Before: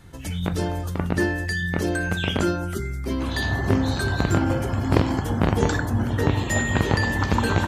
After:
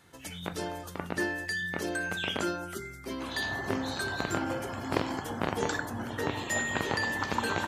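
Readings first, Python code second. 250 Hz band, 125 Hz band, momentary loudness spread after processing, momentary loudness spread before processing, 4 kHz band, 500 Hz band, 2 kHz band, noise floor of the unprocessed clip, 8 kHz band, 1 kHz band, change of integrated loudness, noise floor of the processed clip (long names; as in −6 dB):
−11.0 dB, −17.5 dB, 8 LU, 6 LU, −4.5 dB, −8.0 dB, −5.0 dB, −30 dBFS, −4.5 dB, −5.5 dB, −9.0 dB, −45 dBFS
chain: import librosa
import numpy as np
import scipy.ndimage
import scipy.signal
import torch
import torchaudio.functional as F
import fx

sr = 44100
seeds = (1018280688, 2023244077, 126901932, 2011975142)

y = fx.highpass(x, sr, hz=490.0, slope=6)
y = y * librosa.db_to_amplitude(-4.5)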